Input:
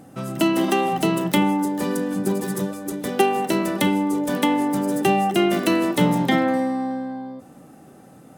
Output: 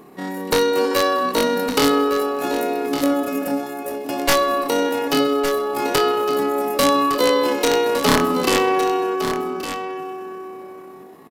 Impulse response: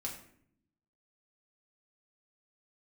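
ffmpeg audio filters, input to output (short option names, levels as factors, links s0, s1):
-filter_complex "[0:a]aeval=exprs='(mod(2.82*val(0)+1,2)-1)/2.82':c=same,asetrate=85689,aresample=44100,atempo=0.514651,aecho=1:1:859:0.316,asplit=2[s0][s1];[1:a]atrim=start_sample=2205[s2];[s1][s2]afir=irnorm=-1:irlink=0,volume=0.299[s3];[s0][s3]amix=inputs=2:normalize=0,asetrate=32667,aresample=44100"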